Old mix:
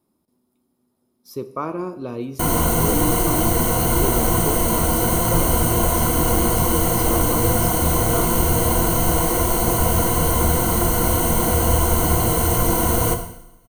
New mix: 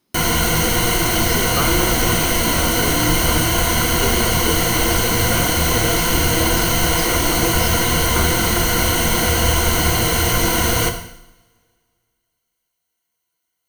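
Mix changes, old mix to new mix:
background: entry −2.25 s
master: add flat-topped bell 3,000 Hz +11.5 dB 2.3 octaves

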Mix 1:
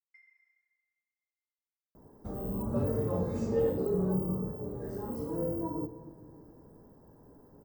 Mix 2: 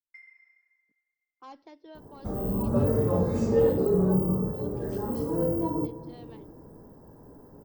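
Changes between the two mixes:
speech: unmuted
first sound +10.0 dB
second sound +6.5 dB

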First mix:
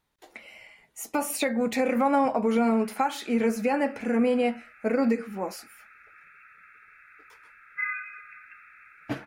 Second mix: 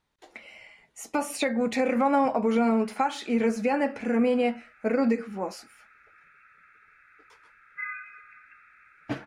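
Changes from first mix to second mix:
background: add high-shelf EQ 2,100 Hz −10.5 dB
master: add low-pass filter 8,300 Hz 12 dB per octave

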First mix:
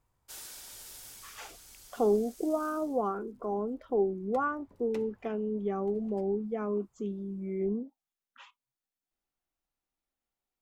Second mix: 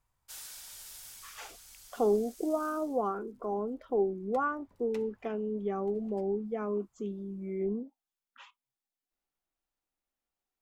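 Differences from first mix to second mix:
background: add parametric band 360 Hz −9.5 dB 1.7 octaves
master: add parametric band 83 Hz −3.5 dB 3 octaves

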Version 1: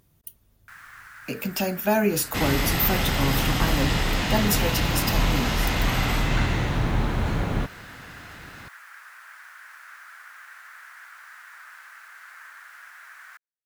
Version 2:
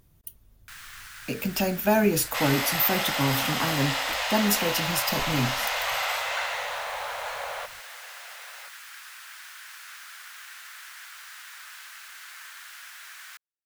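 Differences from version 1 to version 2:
first sound: add high shelf with overshoot 2,300 Hz +10 dB, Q 1.5
second sound: add Butterworth high-pass 510 Hz 72 dB per octave
master: remove high-pass filter 77 Hz 6 dB per octave

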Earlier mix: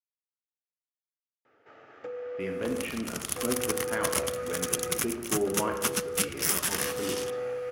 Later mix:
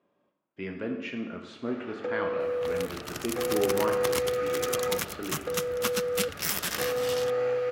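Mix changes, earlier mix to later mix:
speech: entry −1.80 s
first sound +6.0 dB
master: add thirty-one-band graphic EQ 4,000 Hz +4 dB, 6,300 Hz −3 dB, 10,000 Hz −10 dB

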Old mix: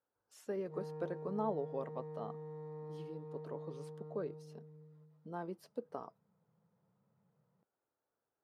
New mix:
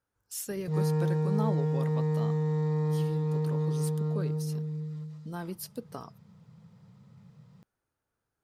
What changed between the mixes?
background +11.5 dB
master: remove resonant band-pass 600 Hz, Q 0.97

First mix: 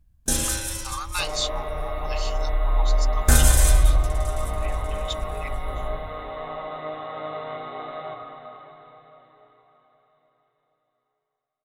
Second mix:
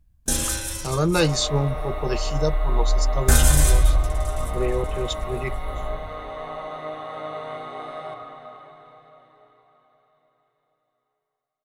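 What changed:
speech: remove Chebyshev high-pass with heavy ripple 780 Hz, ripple 6 dB
second sound: remove linear-phase brick-wall low-pass 4,100 Hz

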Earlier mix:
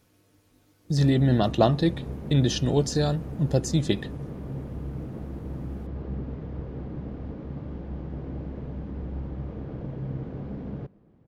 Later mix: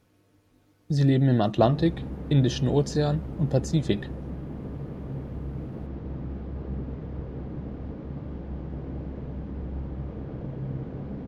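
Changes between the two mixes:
speech: add high-shelf EQ 3,700 Hz −8 dB
background: entry +0.60 s

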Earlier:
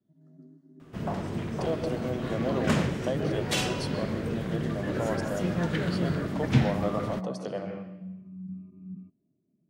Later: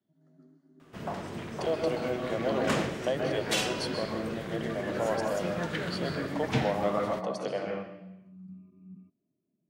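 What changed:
speech: send +8.0 dB
master: add low-shelf EQ 320 Hz −10 dB

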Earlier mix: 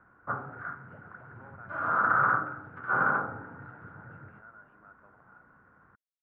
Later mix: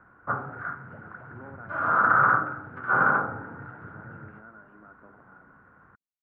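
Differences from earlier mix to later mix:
speech: add parametric band 260 Hz +14.5 dB 2.2 octaves
background +4.5 dB

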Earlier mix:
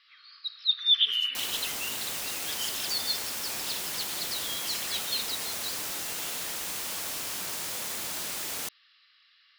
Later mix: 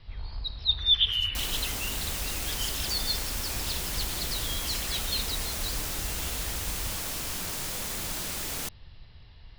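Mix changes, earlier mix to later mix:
first sound: remove linear-phase brick-wall high-pass 1,100 Hz
second sound: remove high-pass filter 390 Hz 6 dB per octave

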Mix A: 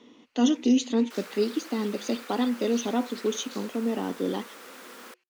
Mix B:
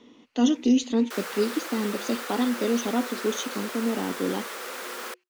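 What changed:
second sound +10.0 dB
master: add low-shelf EQ 86 Hz +9.5 dB

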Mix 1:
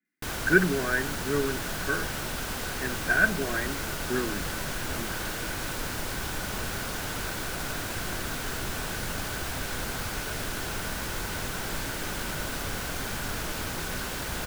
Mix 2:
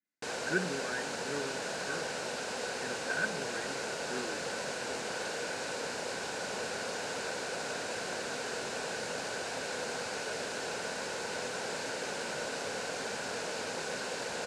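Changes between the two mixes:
speech −11.5 dB
background: add loudspeaker in its box 300–7,700 Hz, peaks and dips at 320 Hz −7 dB, 490 Hz +7 dB, 1,200 Hz −8 dB, 2,000 Hz −5 dB, 3,300 Hz −7 dB, 5,800 Hz −3 dB

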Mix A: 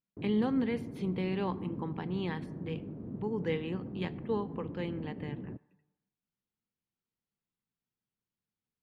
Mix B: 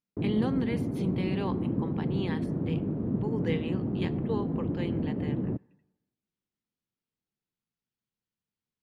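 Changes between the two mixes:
speech: add high-shelf EQ 4,700 Hz +9 dB
background +11.5 dB

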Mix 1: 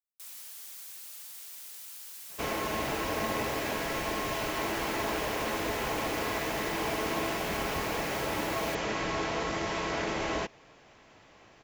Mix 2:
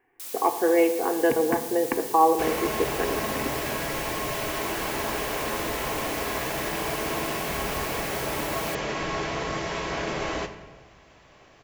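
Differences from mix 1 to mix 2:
speech: unmuted
first sound +7.5 dB
reverb: on, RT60 1.2 s

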